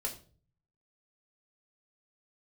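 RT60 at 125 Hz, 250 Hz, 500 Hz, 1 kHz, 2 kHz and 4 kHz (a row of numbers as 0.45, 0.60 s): 0.90, 0.60, 0.50, 0.35, 0.30, 0.35 s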